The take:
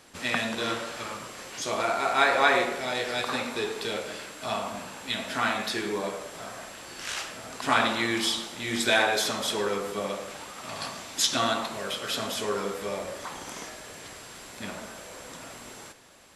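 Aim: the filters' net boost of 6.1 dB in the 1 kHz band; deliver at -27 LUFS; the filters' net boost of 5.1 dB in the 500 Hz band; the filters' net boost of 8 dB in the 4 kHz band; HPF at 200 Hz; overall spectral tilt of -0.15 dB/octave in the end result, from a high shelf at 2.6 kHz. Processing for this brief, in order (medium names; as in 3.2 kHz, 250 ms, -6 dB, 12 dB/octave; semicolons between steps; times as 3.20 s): high-pass 200 Hz; peaking EQ 500 Hz +4.5 dB; peaking EQ 1 kHz +5.5 dB; treble shelf 2.6 kHz +6.5 dB; peaking EQ 4 kHz +4 dB; trim -5 dB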